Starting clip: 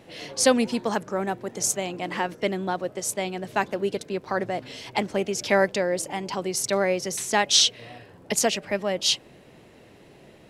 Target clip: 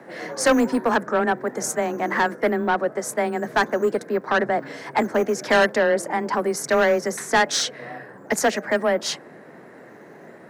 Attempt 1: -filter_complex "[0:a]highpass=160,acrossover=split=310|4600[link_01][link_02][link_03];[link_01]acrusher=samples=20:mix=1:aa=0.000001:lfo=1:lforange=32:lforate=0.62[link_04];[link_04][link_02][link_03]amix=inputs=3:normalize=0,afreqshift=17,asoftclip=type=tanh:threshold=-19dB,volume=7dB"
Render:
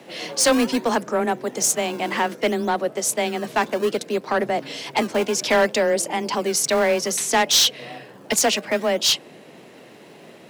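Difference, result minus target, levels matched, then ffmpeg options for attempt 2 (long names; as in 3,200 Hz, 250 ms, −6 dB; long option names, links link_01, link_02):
sample-and-hold swept by an LFO: distortion +15 dB; 4,000 Hz band +7.0 dB
-filter_complex "[0:a]highpass=160,highshelf=frequency=2200:width_type=q:width=3:gain=-9,acrossover=split=310|4600[link_01][link_02][link_03];[link_01]acrusher=samples=4:mix=1:aa=0.000001:lfo=1:lforange=6.4:lforate=0.62[link_04];[link_04][link_02][link_03]amix=inputs=3:normalize=0,afreqshift=17,asoftclip=type=tanh:threshold=-19dB,volume=7dB"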